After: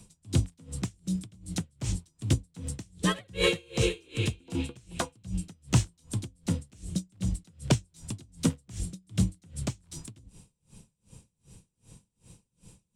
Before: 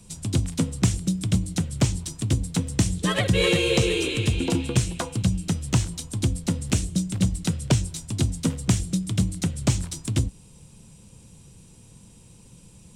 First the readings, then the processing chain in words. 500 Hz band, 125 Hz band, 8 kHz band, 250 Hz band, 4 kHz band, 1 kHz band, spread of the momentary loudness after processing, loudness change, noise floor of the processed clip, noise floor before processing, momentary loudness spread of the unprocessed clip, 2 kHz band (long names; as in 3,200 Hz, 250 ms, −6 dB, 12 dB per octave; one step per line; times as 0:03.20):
−7.0 dB, −7.5 dB, −8.5 dB, −7.5 dB, −7.0 dB, −5.0 dB, 11 LU, −7.5 dB, −78 dBFS, −50 dBFS, 6 LU, −6.5 dB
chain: tremolo with a sine in dB 2.6 Hz, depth 33 dB
level −1 dB